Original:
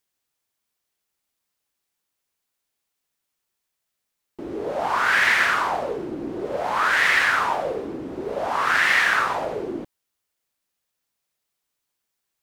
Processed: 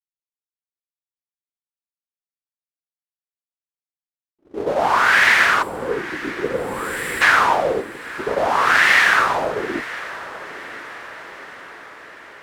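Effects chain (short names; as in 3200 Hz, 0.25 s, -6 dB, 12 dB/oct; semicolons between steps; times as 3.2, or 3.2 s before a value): gate -28 dBFS, range -43 dB; spectral gain 5.63–7.21, 550–7100 Hz -16 dB; AGC gain up to 8.5 dB; diffused feedback echo 0.951 s, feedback 60%, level -16 dB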